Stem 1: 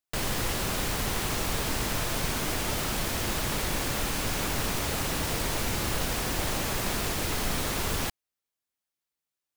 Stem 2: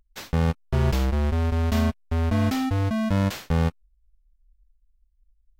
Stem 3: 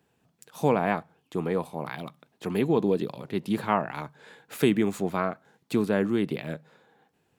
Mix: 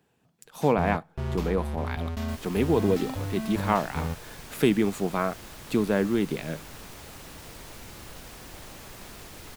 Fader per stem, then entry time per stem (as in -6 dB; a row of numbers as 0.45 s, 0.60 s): -14.5 dB, -9.5 dB, +0.5 dB; 2.15 s, 0.45 s, 0.00 s